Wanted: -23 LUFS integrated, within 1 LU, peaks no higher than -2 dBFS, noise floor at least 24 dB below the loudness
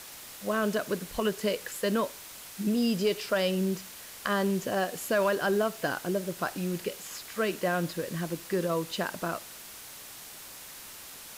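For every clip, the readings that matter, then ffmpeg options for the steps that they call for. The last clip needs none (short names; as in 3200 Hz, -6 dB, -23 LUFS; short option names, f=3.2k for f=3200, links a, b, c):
noise floor -46 dBFS; noise floor target -55 dBFS; loudness -30.5 LUFS; peak -13.0 dBFS; loudness target -23.0 LUFS
-> -af "afftdn=nr=9:nf=-46"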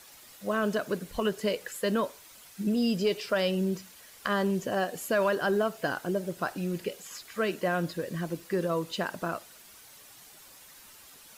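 noise floor -53 dBFS; noise floor target -55 dBFS
-> -af "afftdn=nr=6:nf=-53"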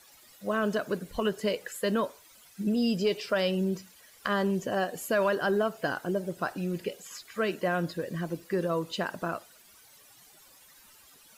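noise floor -57 dBFS; loudness -30.5 LUFS; peak -14.0 dBFS; loudness target -23.0 LUFS
-> -af "volume=7.5dB"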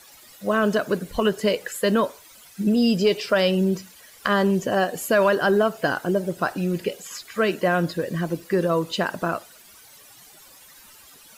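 loudness -23.0 LUFS; peak -6.5 dBFS; noise floor -49 dBFS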